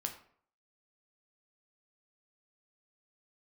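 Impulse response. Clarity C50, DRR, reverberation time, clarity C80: 10.0 dB, 3.5 dB, 0.55 s, 13.5 dB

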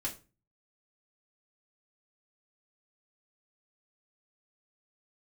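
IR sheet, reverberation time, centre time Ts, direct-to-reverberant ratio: 0.30 s, 13 ms, −5.0 dB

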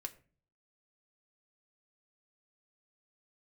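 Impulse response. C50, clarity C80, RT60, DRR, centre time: 17.5 dB, 21.0 dB, 0.40 s, 4.5 dB, 5 ms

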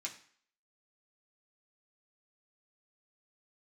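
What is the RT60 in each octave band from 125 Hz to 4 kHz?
0.45, 0.50, 0.50, 0.55, 0.55, 0.50 seconds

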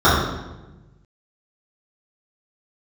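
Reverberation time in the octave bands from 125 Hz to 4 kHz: 1.8, 1.4, 1.2, 0.95, 0.90, 0.80 seconds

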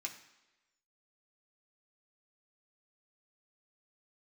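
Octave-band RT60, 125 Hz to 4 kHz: 0.80, 0.95, 1.1, 1.0, 1.1, 1.0 seconds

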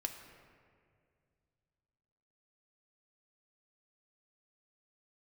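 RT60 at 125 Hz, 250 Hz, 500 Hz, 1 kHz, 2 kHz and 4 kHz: 3.2, 2.7, 2.4, 1.9, 1.9, 1.2 seconds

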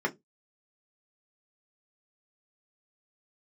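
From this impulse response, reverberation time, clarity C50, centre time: 0.20 s, 23.0 dB, 7 ms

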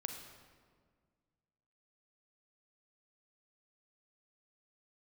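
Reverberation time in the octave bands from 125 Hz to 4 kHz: 2.4, 2.2, 1.9, 1.6, 1.4, 1.1 seconds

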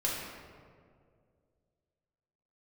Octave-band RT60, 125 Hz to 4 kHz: 2.7, 2.4, 2.5, 1.8, 1.4, 1.0 seconds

